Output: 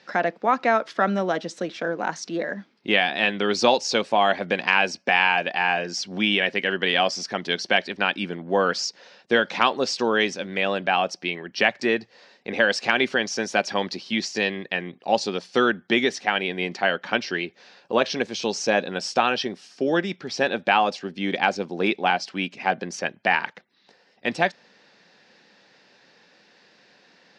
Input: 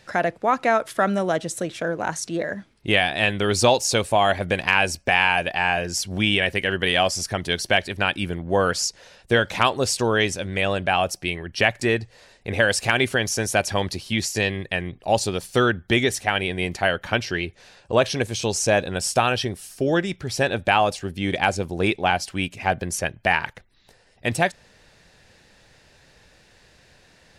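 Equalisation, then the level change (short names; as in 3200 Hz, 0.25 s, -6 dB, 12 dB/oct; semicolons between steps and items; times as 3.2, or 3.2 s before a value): Chebyshev band-pass 200–5300 Hz, order 3; notch 630 Hz, Q 17; 0.0 dB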